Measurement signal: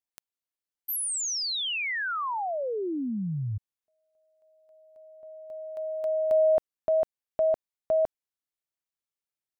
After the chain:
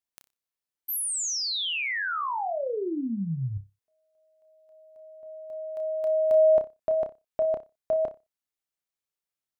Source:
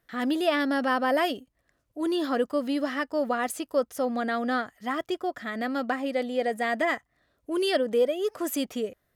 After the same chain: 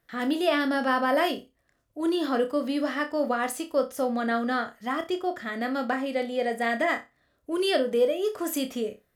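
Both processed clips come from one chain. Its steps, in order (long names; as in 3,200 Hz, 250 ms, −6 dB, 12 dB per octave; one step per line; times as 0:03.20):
flutter between parallel walls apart 5.2 metres, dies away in 0.23 s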